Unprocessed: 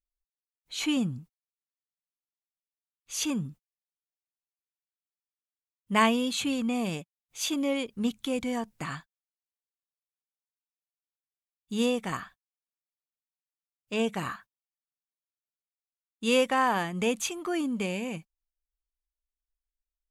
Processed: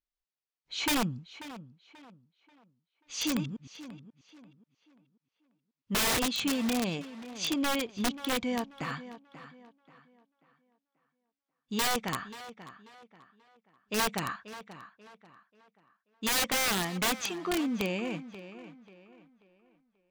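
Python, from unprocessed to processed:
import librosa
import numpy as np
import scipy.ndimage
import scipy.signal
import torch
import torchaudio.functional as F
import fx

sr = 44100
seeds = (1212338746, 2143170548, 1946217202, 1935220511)

y = fx.reverse_delay(x, sr, ms=109, wet_db=-7.0, at=(3.13, 6.26))
y = scipy.signal.sosfilt(scipy.signal.butter(4, 5800.0, 'lowpass', fs=sr, output='sos'), y)
y = fx.low_shelf(y, sr, hz=82.0, db=-8.0)
y = (np.mod(10.0 ** (22.5 / 20.0) * y + 1.0, 2.0) - 1.0) / 10.0 ** (22.5 / 20.0)
y = fx.echo_tape(y, sr, ms=536, feedback_pct=38, wet_db=-12, lp_hz=3600.0, drive_db=25.0, wow_cents=17)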